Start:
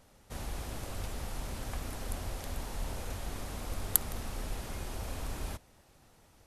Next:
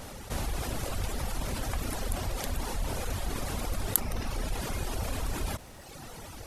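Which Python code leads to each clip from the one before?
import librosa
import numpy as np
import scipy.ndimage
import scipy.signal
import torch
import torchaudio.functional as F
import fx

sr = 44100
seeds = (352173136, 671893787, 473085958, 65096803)

y = fx.dereverb_blind(x, sr, rt60_s=1.0)
y = fx.env_flatten(y, sr, amount_pct=50)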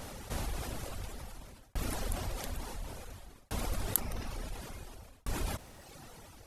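y = fx.tremolo_shape(x, sr, shape='saw_down', hz=0.57, depth_pct=100)
y = F.gain(torch.from_numpy(y), -1.5).numpy()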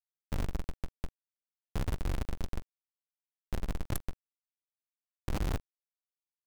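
y = fx.rider(x, sr, range_db=5, speed_s=2.0)
y = fx.schmitt(y, sr, flips_db=-27.0)
y = fx.quant_companded(y, sr, bits=4)
y = F.gain(torch.from_numpy(y), 6.0).numpy()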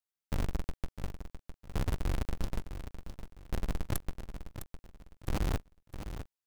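y = fx.echo_feedback(x, sr, ms=657, feedback_pct=29, wet_db=-10)
y = F.gain(torch.from_numpy(y), 1.0).numpy()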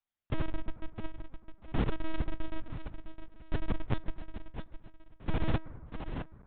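y = fx.rev_fdn(x, sr, rt60_s=2.2, lf_ratio=1.0, hf_ratio=0.3, size_ms=85.0, drr_db=14.5)
y = fx.lpc_vocoder(y, sr, seeds[0], excitation='pitch_kept', order=10)
y = fx.air_absorb(y, sr, metres=53.0)
y = F.gain(torch.from_numpy(y), 3.0).numpy()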